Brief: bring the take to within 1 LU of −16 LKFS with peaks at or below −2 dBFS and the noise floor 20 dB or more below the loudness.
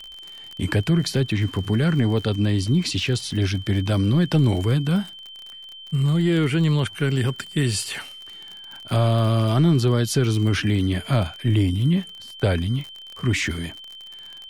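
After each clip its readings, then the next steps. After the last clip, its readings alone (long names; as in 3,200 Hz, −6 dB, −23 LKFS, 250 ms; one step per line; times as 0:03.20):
crackle rate 41 per second; interfering tone 3,100 Hz; level of the tone −38 dBFS; integrated loudness −22.0 LKFS; sample peak −9.0 dBFS; target loudness −16.0 LKFS
→ click removal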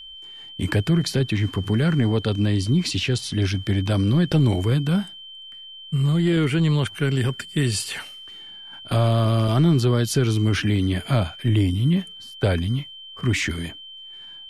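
crackle rate 0 per second; interfering tone 3,100 Hz; level of the tone −38 dBFS
→ notch filter 3,100 Hz, Q 30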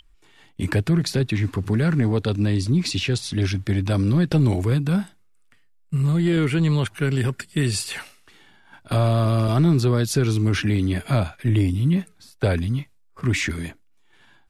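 interfering tone none found; integrated loudness −22.0 LKFS; sample peak −9.0 dBFS; target loudness −16.0 LKFS
→ level +6 dB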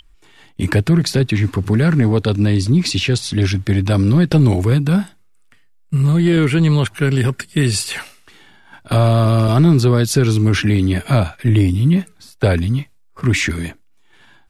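integrated loudness −16.0 LKFS; sample peak −3.0 dBFS; background noise floor −50 dBFS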